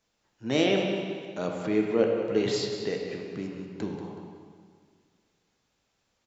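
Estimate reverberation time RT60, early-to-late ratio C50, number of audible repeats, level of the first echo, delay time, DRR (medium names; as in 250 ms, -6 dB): 1.9 s, 2.0 dB, 1, -10.5 dB, 186 ms, 0.5 dB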